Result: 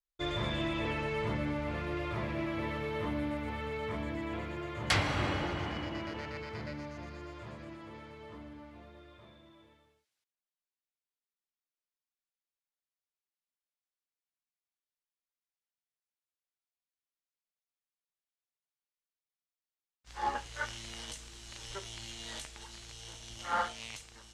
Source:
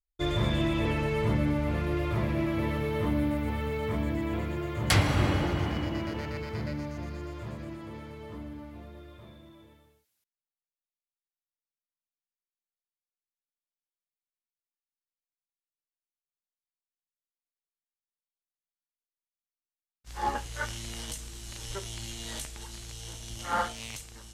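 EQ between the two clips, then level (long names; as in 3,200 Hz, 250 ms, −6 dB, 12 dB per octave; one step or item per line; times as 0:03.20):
high-frequency loss of the air 62 metres
low-shelf EQ 410 Hz −9 dB
−1.0 dB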